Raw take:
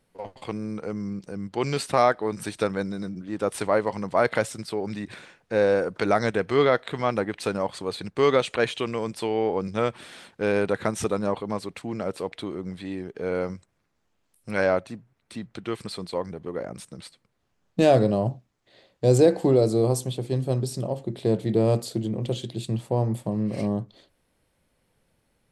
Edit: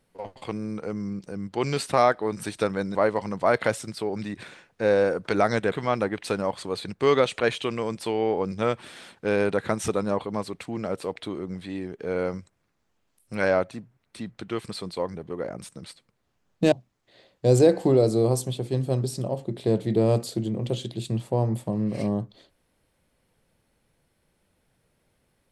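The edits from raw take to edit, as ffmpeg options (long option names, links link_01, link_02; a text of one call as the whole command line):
ffmpeg -i in.wav -filter_complex "[0:a]asplit=4[link_01][link_02][link_03][link_04];[link_01]atrim=end=2.952[link_05];[link_02]atrim=start=3.658:end=6.432[link_06];[link_03]atrim=start=6.878:end=17.882[link_07];[link_04]atrim=start=18.308[link_08];[link_05][link_06]acrossfade=duration=0.004:curve1=hsin:curve2=hsin[link_09];[link_09][link_07]acrossfade=duration=0.004:curve1=hsin:curve2=hsin[link_10];[link_10][link_08]acrossfade=duration=0.004:curve1=hsin:curve2=hsin" out.wav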